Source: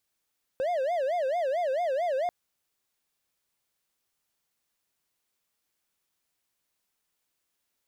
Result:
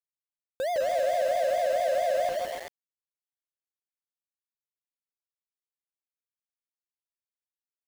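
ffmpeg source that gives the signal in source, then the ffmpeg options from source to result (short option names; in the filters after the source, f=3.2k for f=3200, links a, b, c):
-f lavfi -i "aevalsrc='0.0708*(1-4*abs(mod((616.5*t-99.5/(2*PI*4.5)*sin(2*PI*4.5*t))+0.25,1)-0.5))':d=1.69:s=44100"
-filter_complex "[0:a]bandreject=f=760:w=21,asplit=2[a][b];[b]aecho=0:1:160|288|390.4|472.3|537.9:0.631|0.398|0.251|0.158|0.1[c];[a][c]amix=inputs=2:normalize=0,aeval=exprs='val(0)*gte(abs(val(0)),0.0188)':c=same"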